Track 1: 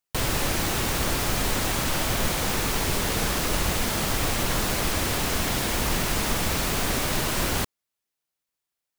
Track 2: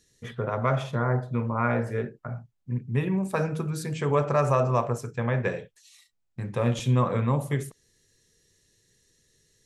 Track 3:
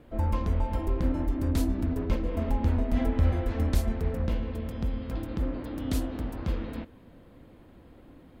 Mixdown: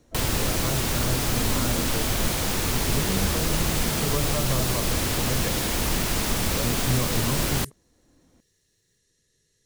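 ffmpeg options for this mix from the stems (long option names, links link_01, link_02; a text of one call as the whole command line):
ffmpeg -i stem1.wav -i stem2.wav -i stem3.wav -filter_complex "[0:a]volume=1dB[link_01];[1:a]volume=-4dB[link_02];[2:a]tremolo=f=0.58:d=0.62,volume=-6.5dB[link_03];[link_01][link_02][link_03]amix=inputs=3:normalize=0,acrossover=split=460|3000[link_04][link_05][link_06];[link_05]acompressor=threshold=-31dB:ratio=6[link_07];[link_04][link_07][link_06]amix=inputs=3:normalize=0" out.wav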